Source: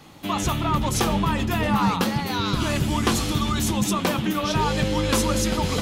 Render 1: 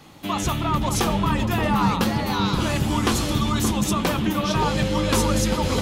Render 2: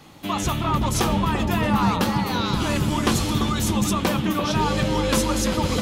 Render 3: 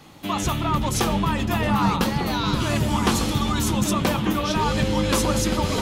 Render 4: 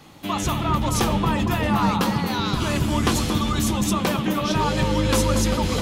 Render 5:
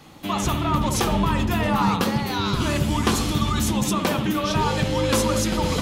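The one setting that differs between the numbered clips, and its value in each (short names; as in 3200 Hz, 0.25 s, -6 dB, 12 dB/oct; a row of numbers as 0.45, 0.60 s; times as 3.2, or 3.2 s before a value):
dark delay, time: 574, 341, 1200, 230, 65 ms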